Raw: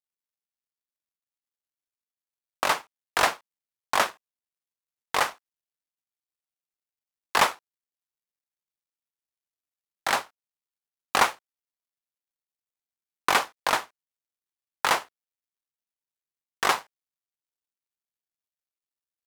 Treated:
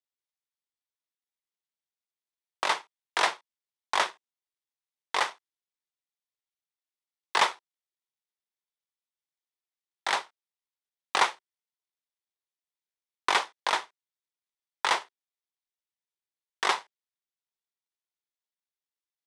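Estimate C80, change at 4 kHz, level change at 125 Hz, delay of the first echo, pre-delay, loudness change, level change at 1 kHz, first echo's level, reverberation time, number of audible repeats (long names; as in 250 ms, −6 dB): no reverb audible, −1.0 dB, below −10 dB, no echo audible, no reverb audible, −2.5 dB, −3.0 dB, no echo audible, no reverb audible, no echo audible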